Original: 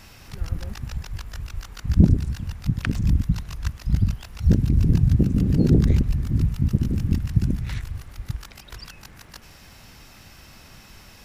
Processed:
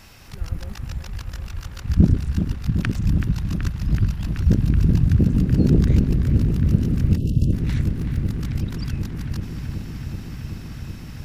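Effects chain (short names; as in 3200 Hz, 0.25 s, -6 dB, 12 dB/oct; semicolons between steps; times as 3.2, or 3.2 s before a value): 7.95–8.42 switching dead time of 0.054 ms; dark delay 0.378 s, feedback 85%, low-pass 3100 Hz, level -8 dB; 7.17–7.53 spectral delete 670–2600 Hz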